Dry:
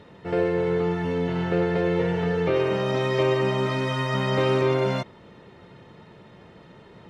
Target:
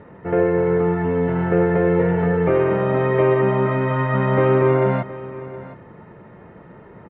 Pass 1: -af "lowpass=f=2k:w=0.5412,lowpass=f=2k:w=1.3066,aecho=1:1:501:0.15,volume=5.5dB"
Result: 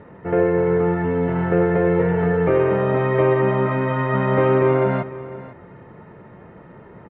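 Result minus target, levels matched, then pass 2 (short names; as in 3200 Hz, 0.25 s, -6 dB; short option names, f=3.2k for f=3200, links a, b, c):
echo 0.218 s early
-af "lowpass=f=2k:w=0.5412,lowpass=f=2k:w=1.3066,aecho=1:1:719:0.15,volume=5.5dB"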